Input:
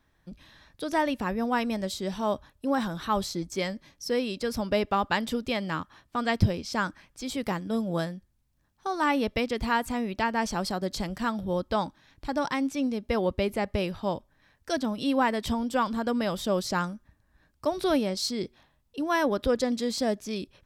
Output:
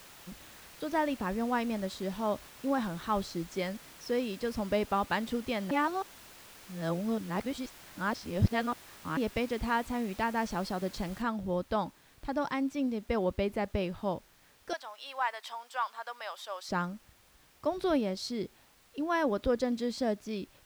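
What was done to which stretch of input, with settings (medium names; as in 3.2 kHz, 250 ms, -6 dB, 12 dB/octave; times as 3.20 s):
5.71–9.17 s: reverse
11.22 s: noise floor step -43 dB -54 dB
14.73–16.69 s: high-pass 780 Hz 24 dB/octave
whole clip: treble shelf 4.3 kHz -10 dB; trim -3.5 dB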